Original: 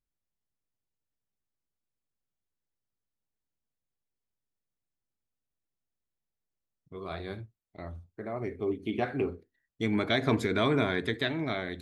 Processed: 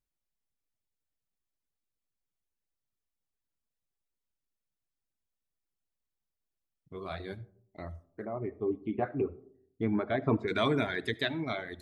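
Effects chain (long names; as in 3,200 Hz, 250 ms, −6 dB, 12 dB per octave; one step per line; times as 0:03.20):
0:08.25–0:10.48: low-pass filter 1,300 Hz 12 dB per octave
reverb reduction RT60 1.5 s
comb and all-pass reverb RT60 0.67 s, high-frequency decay 0.3×, pre-delay 30 ms, DRR 20 dB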